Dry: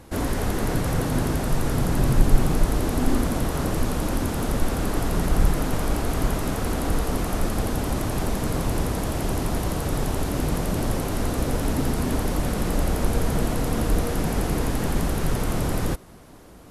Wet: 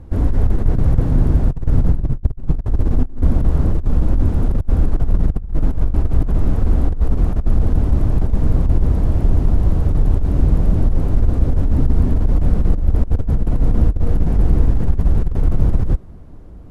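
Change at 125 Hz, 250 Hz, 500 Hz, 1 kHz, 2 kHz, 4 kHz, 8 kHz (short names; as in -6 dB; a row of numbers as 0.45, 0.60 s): +8.5 dB, +2.0 dB, -2.0 dB, -5.5 dB, -9.5 dB, under -10 dB, under -15 dB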